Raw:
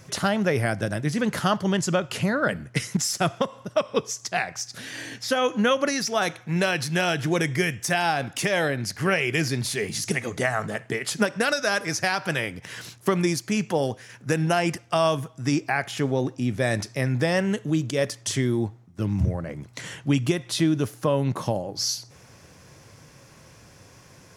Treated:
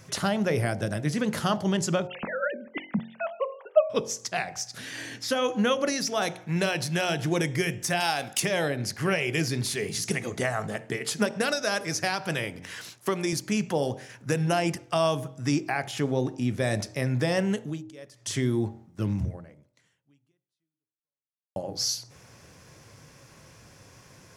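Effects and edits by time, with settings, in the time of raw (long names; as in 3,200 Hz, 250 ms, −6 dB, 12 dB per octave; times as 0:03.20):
0:02.07–0:03.90: three sine waves on the formant tracks
0:08.00–0:08.40: spectral tilt +2.5 dB per octave
0:12.63–0:13.33: high-pass filter 320 Hz 6 dB per octave
0:17.56–0:18.39: duck −19.5 dB, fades 0.28 s
0:19.12–0:21.56: fade out exponential
whole clip: dynamic equaliser 1,600 Hz, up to −4 dB, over −34 dBFS, Q 1.1; hum removal 45.02 Hz, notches 21; level −1.5 dB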